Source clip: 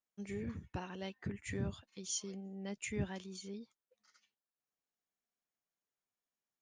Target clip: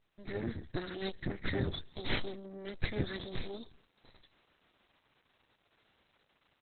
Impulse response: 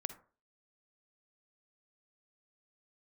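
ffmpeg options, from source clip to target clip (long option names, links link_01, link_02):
-filter_complex "[0:a]asplit=2[link_01][link_02];[link_02]asoftclip=type=tanh:threshold=-37dB,volume=-5dB[link_03];[link_01][link_03]amix=inputs=2:normalize=0,firequalizer=gain_entry='entry(130,0);entry(210,-5);entry(340,10);entry(590,-25);entry(1800,9);entry(2700,-7);entry(3900,6);entry(6000,-22);entry(8800,8)':delay=0.05:min_phase=1,asplit=2[link_04][link_05];[link_05]adelay=132,lowpass=frequency=4700:poles=1,volume=-23.5dB,asplit=2[link_06][link_07];[link_07]adelay=132,lowpass=frequency=4700:poles=1,volume=0.3[link_08];[link_06][link_08]amix=inputs=2:normalize=0[link_09];[link_04][link_09]amix=inputs=2:normalize=0,aexciter=amount=13.6:drive=5.8:freq=3900,acrossover=split=8000[link_10][link_11];[link_11]acompressor=threshold=-37dB:ratio=4:attack=1:release=60[link_12];[link_10][link_12]amix=inputs=2:normalize=0,aeval=exprs='max(val(0),0)':channel_layout=same,bandreject=frequency=5400:width=18,dynaudnorm=framelen=180:gausssize=3:maxgain=10.5dB,highshelf=frequency=3100:gain=-7.5,volume=-2.5dB" -ar 48000 -c:a libopus -b:a 8k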